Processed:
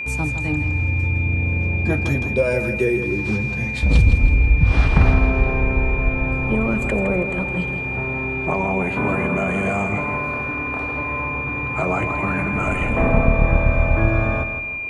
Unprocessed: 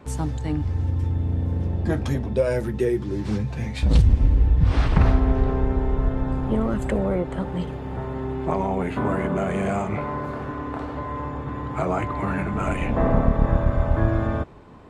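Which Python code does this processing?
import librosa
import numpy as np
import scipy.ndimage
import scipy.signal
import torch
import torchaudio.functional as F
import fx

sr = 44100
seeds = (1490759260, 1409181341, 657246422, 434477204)

y = fx.echo_feedback(x, sr, ms=162, feedback_pct=36, wet_db=-9)
y = y + 10.0 ** (-27.0 / 20.0) * np.sin(2.0 * np.pi * 2400.0 * np.arange(len(y)) / sr)
y = F.gain(torch.from_numpy(y), 2.0).numpy()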